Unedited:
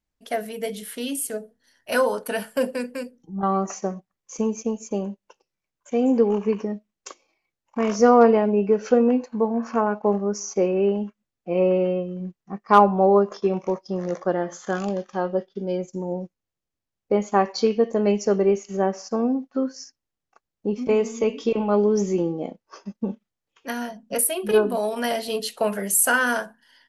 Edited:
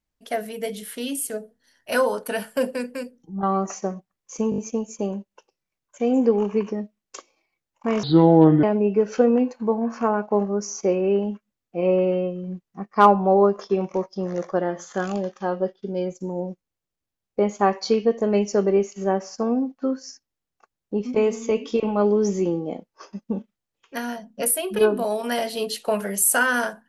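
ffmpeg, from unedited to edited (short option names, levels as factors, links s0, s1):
-filter_complex "[0:a]asplit=7[s0][s1][s2][s3][s4][s5][s6];[s0]atrim=end=4.522[s7];[s1]atrim=start=4.498:end=4.522[s8];[s2]atrim=start=4.498:end=4.522[s9];[s3]atrim=start=4.498:end=4.522[s10];[s4]atrim=start=4.498:end=7.954[s11];[s5]atrim=start=7.95:end=8.36,asetpts=PTS-STARTPTS,asetrate=29988,aresample=44100[s12];[s6]atrim=start=8.356[s13];[s7][s8]acrossfade=d=0.004:c1=hsin:c2=hsin[s14];[s14][s9]acrossfade=d=0.004:c1=hsin:c2=hsin[s15];[s15][s10]acrossfade=d=0.004:c1=hsin:c2=hsin[s16];[s16][s11]acrossfade=d=0.004:c1=hsin:c2=hsin[s17];[s17][s12]acrossfade=d=0.004:c1=hsin:c2=hsin[s18];[s18][s13]acrossfade=d=0.004:c1=hsin:c2=hsin"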